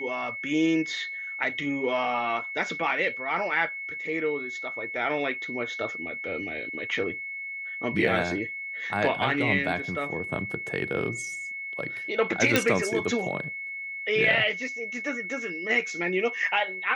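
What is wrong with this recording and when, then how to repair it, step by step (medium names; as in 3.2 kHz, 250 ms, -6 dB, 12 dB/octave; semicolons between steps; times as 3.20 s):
whine 2.2 kHz -33 dBFS
12.56 s: pop -5 dBFS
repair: de-click; band-stop 2.2 kHz, Q 30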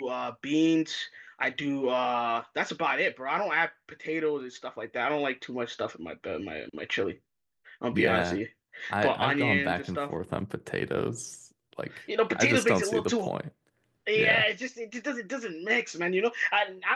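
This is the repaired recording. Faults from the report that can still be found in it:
nothing left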